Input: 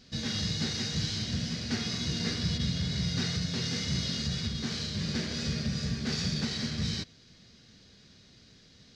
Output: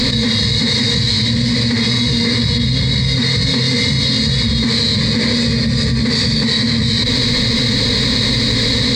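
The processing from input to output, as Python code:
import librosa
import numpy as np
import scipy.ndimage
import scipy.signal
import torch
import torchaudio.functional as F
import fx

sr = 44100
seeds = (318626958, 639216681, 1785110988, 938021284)

y = fx.ripple_eq(x, sr, per_octave=0.98, db=14)
y = fx.env_flatten(y, sr, amount_pct=100)
y = y * 10.0 ** (7.5 / 20.0)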